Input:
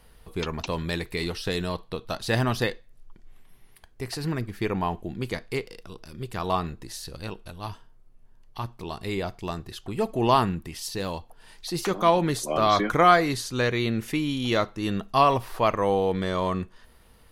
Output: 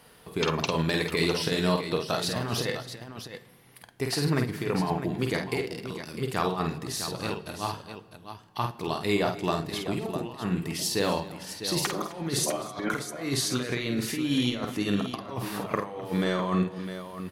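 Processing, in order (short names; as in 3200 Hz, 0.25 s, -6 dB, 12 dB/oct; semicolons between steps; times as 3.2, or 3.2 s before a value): HPF 140 Hz 12 dB/oct; negative-ratio compressor -29 dBFS, ratio -0.5; on a send: tapped delay 49/258/654 ms -5/-18/-10 dB; on the sum: shoebox room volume 2500 m³, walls mixed, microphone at 0.36 m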